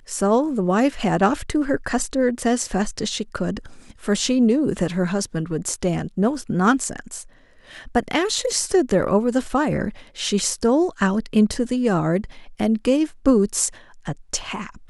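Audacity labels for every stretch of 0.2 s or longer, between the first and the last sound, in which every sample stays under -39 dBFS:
7.260000	7.660000	silence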